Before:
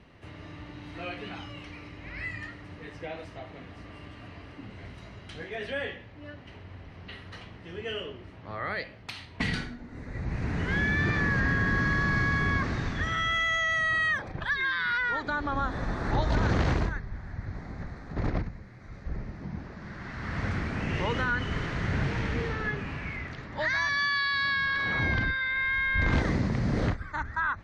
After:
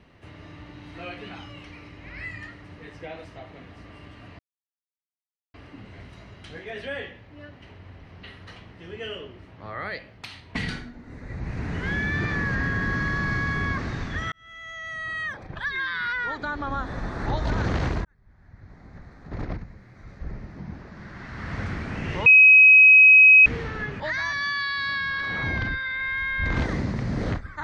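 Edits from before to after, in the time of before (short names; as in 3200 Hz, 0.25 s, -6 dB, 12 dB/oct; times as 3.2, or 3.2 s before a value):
4.39 insert silence 1.15 s
13.17–14.63 fade in
16.9–18.82 fade in
21.11–22.31 bleep 2540 Hz -8.5 dBFS
22.85–23.56 cut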